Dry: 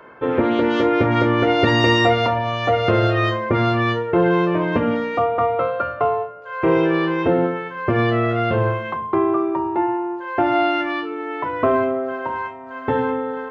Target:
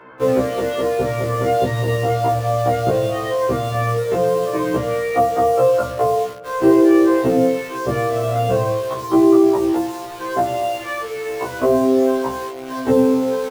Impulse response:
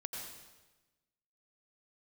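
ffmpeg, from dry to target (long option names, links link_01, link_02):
-filter_complex "[0:a]acrossover=split=110|910[link_01][link_02][link_03];[link_03]acompressor=threshold=-34dB:ratio=6[link_04];[link_01][link_02][link_04]amix=inputs=3:normalize=0,alimiter=limit=-12dB:level=0:latency=1:release=449,flanger=delay=8.5:depth=10:regen=-30:speed=0.22:shape=triangular,asplit=2[link_05][link_06];[link_06]acrusher=bits=5:mix=0:aa=0.000001,volume=-5dB[link_07];[link_05][link_07]amix=inputs=2:normalize=0,asplit=2[link_08][link_09];[link_09]adelay=1081,lowpass=frequency=2000:poles=1,volume=-21dB,asplit=2[link_10][link_11];[link_11]adelay=1081,lowpass=frequency=2000:poles=1,volume=0.52,asplit=2[link_12][link_13];[link_13]adelay=1081,lowpass=frequency=2000:poles=1,volume=0.52,asplit=2[link_14][link_15];[link_15]adelay=1081,lowpass=frequency=2000:poles=1,volume=0.52[link_16];[link_08][link_10][link_12][link_14][link_16]amix=inputs=5:normalize=0,afftfilt=real='re*1.73*eq(mod(b,3),0)':imag='im*1.73*eq(mod(b,3),0)':win_size=2048:overlap=0.75,volume=7.5dB"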